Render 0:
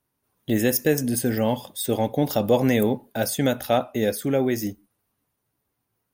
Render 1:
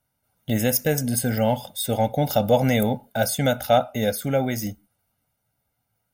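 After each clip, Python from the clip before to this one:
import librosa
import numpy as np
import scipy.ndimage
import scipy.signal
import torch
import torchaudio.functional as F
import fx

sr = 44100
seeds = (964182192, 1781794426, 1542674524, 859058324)

y = x + 0.71 * np.pad(x, (int(1.4 * sr / 1000.0), 0))[:len(x)]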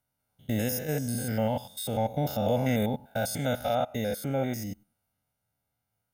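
y = fx.spec_steps(x, sr, hold_ms=100)
y = y * librosa.db_to_amplitude(-5.0)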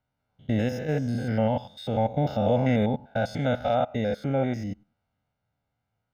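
y = fx.air_absorb(x, sr, metres=210.0)
y = y * librosa.db_to_amplitude(4.0)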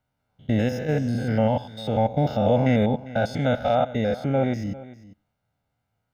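y = x + 10.0 ** (-18.0 / 20.0) * np.pad(x, (int(400 * sr / 1000.0), 0))[:len(x)]
y = y * librosa.db_to_amplitude(3.0)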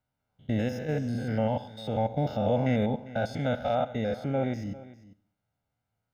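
y = fx.echo_feedback(x, sr, ms=70, feedback_pct=53, wet_db=-20)
y = y * librosa.db_to_amplitude(-6.0)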